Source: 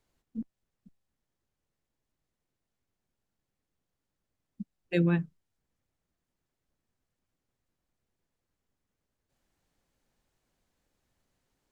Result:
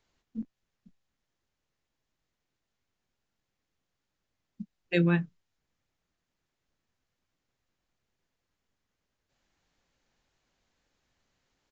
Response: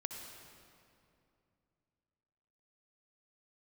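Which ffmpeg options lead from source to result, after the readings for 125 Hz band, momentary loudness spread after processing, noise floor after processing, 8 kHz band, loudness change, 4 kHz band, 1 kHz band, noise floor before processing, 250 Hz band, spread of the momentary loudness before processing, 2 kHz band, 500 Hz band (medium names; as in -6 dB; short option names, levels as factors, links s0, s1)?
+0.5 dB, 22 LU, -84 dBFS, no reading, +1.0 dB, +5.0 dB, +3.0 dB, under -85 dBFS, +0.5 dB, 20 LU, +4.5 dB, +1.0 dB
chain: -filter_complex "[0:a]equalizer=f=2800:w=0.32:g=6,asplit=2[s0][s1];[s1]adelay=23,volume=0.211[s2];[s0][s2]amix=inputs=2:normalize=0,aresample=16000,aresample=44100,volume=0.891"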